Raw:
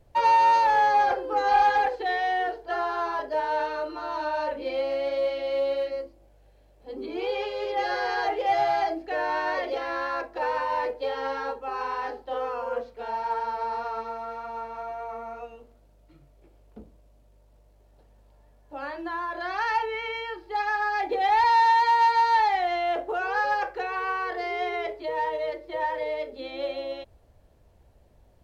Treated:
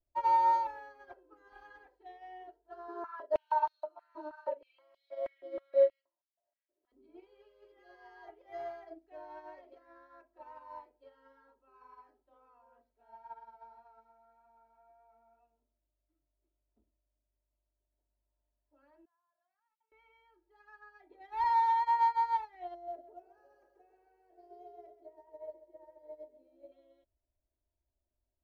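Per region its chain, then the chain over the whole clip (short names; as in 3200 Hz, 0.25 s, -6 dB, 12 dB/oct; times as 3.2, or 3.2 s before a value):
2.88–6.92 doubler 42 ms -13.5 dB + stepped high-pass 6.3 Hz 350–3900 Hz
19.05–19.92 gate -21 dBFS, range -27 dB + HPF 570 Hz 24 dB/oct + negative-ratio compressor -55 dBFS, ratio -0.5
22.74–26.72 band shelf 2000 Hz -13.5 dB 2.5 oct + lo-fi delay 0.134 s, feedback 55%, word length 10-bit, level -6 dB
whole clip: bell 4500 Hz -10.5 dB 2.6 oct; comb 3.1 ms, depth 98%; upward expander 2.5:1, over -31 dBFS; gain -6.5 dB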